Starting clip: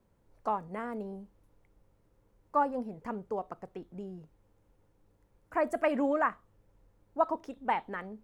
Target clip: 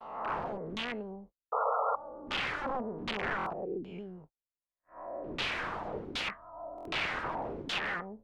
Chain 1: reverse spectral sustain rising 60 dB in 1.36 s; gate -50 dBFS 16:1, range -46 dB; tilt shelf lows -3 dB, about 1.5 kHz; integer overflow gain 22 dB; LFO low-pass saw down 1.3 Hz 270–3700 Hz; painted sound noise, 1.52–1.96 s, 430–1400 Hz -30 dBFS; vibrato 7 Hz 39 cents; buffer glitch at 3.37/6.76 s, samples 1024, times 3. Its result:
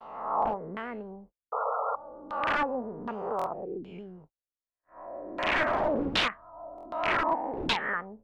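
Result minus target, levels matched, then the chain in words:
integer overflow: distortion -12 dB
reverse spectral sustain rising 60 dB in 1.36 s; gate -50 dBFS 16:1, range -46 dB; tilt shelf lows -3 dB, about 1.5 kHz; integer overflow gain 30 dB; LFO low-pass saw down 1.3 Hz 270–3700 Hz; painted sound noise, 1.52–1.96 s, 430–1400 Hz -30 dBFS; vibrato 7 Hz 39 cents; buffer glitch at 3.37/6.76 s, samples 1024, times 3

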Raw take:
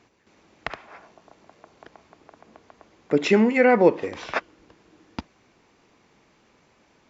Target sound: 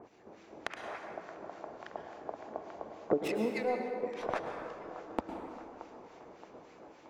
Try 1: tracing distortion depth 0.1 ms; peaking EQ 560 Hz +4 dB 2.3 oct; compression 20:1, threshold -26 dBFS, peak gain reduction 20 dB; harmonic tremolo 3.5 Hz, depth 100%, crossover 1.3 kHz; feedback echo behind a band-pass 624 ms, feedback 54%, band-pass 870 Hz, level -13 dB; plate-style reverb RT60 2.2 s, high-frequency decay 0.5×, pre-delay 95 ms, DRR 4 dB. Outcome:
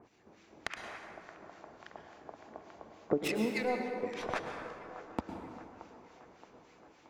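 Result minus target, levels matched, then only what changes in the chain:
500 Hz band -3.5 dB
change: peaking EQ 560 Hz +13 dB 2.3 oct

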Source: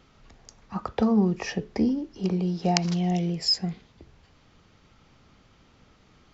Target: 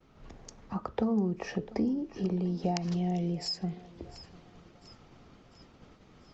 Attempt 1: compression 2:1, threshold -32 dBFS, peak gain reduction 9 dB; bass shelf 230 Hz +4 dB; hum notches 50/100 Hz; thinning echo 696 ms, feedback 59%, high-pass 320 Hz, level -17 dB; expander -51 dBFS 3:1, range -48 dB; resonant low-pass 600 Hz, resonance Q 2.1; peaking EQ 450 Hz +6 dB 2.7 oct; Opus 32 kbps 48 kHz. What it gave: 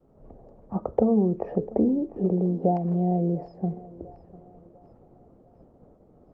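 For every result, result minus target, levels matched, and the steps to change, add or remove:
compression: peak gain reduction -5 dB; 500 Hz band +3.0 dB
change: compression 2:1, threshold -42.5 dBFS, peak gain reduction 14 dB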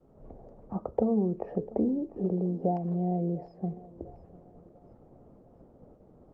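500 Hz band +3.0 dB
remove: resonant low-pass 600 Hz, resonance Q 2.1

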